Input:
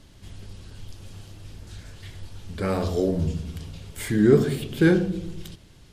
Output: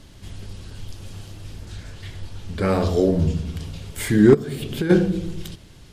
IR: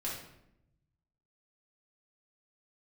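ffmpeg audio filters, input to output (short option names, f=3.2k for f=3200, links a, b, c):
-filter_complex "[0:a]asettb=1/sr,asplit=3[a][b][c];[a]atrim=end=1.654[d];[b]atrim=start=1.65:end=3.6,asetpts=PTS-STARTPTS,afade=t=in:d=0.004:c=qsin,afade=t=out:st=1.946:d=0.004:c=qsin,highshelf=f=8.2k:g=-6[e];[c]atrim=start=3.596[f];[d][e]acrossfade=d=0.004:c1=hsin:c2=qsin[g];[g][f]acrossfade=d=0.004:c1=qsin:c2=hsin,asplit=3[h][i][j];[h]afade=t=out:st=4.33:d=0.02[k];[i]acompressor=threshold=-27dB:ratio=16,afade=t=in:st=4.33:d=0.02,afade=t=out:st=4.89:d=0.02[l];[j]afade=t=in:st=4.89:d=0.02[m];[k][l][m]amix=inputs=3:normalize=0,asoftclip=type=hard:threshold=-9dB,volume=5dB"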